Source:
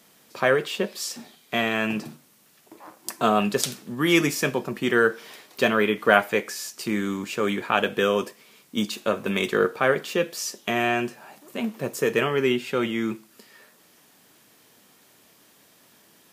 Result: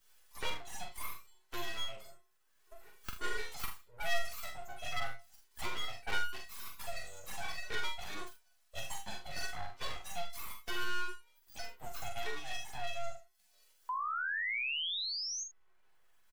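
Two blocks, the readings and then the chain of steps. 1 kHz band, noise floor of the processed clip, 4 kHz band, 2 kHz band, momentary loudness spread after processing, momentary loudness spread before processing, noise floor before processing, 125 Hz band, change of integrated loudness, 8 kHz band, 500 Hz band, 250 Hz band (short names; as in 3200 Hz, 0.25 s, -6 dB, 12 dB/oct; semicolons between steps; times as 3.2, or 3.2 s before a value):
-13.5 dB, -69 dBFS, -8.0 dB, -13.0 dB, 14 LU, 12 LU, -58 dBFS, -18.5 dB, -15.5 dB, -11.0 dB, -24.0 dB, -30.5 dB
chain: low shelf 350 Hz -6 dB; metallic resonator 340 Hz, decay 0.54 s, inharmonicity 0.03; spectral noise reduction 18 dB; full-wave rectifier; painted sound rise, 13.89–15.44, 990–6700 Hz -40 dBFS; on a send: early reflections 43 ms -5.5 dB, 76 ms -15 dB; on the sum: three-band squash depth 70%; gain +5.5 dB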